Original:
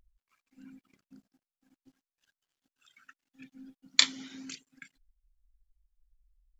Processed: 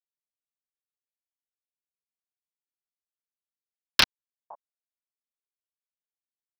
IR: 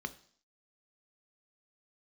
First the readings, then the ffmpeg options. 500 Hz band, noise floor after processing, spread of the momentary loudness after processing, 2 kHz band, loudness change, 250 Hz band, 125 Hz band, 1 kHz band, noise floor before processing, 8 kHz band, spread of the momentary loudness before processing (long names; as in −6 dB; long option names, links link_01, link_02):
+13.0 dB, below −85 dBFS, 3 LU, +6.0 dB, +4.5 dB, −2.5 dB, can't be measured, +12.0 dB, below −85 dBFS, −4.0 dB, 21 LU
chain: -filter_complex "[0:a]aemphasis=mode=production:type=50kf,aresample=11025,acrusher=bits=3:mix=0:aa=0.000001,aresample=44100,acontrast=81,lowshelf=frequency=570:width_type=q:width=1.5:gain=-10,acrossover=split=3600[link_01][link_02];[link_02]acompressor=threshold=-19dB:ratio=4:attack=1:release=60[link_03];[link_01][link_03]amix=inputs=2:normalize=0,asoftclip=type=hard:threshold=-11dB,acrossover=split=240[link_04][link_05];[link_04]adelay=510[link_06];[link_06][link_05]amix=inputs=2:normalize=0,aeval=exprs='val(0)*sin(2*PI*680*n/s+680*0.25/4.2*sin(2*PI*4.2*n/s))':channel_layout=same,volume=4dB"